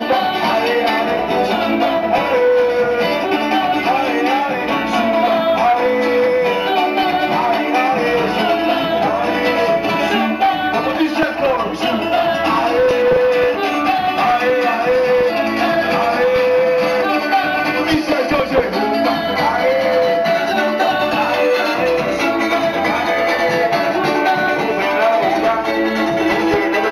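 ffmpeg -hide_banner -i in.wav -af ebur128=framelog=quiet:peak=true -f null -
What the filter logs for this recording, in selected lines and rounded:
Integrated loudness:
  I:         -15.5 LUFS
  Threshold: -25.5 LUFS
Loudness range:
  LRA:         1.0 LU
  Threshold: -35.5 LUFS
  LRA low:   -15.9 LUFS
  LRA high:  -14.8 LUFS
True peak:
  Peak:       -4.3 dBFS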